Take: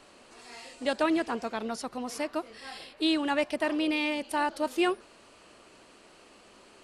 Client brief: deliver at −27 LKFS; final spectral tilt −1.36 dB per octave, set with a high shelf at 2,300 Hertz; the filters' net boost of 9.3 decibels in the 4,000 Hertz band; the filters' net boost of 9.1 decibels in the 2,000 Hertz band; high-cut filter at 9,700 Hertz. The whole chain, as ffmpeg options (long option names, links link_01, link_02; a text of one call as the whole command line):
ffmpeg -i in.wav -af "lowpass=9700,equalizer=frequency=2000:width_type=o:gain=7,highshelf=frequency=2300:gain=6,equalizer=frequency=4000:width_type=o:gain=4,volume=-1.5dB" out.wav